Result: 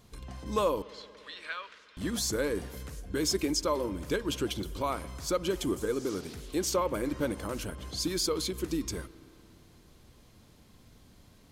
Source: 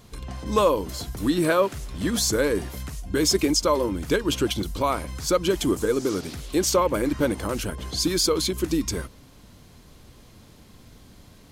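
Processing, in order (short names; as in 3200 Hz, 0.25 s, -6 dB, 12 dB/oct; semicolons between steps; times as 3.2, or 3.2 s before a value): 0.82–1.97 Butterworth band-pass 2500 Hz, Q 0.89; spring tank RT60 3 s, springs 58 ms, chirp 75 ms, DRR 17.5 dB; gain -8 dB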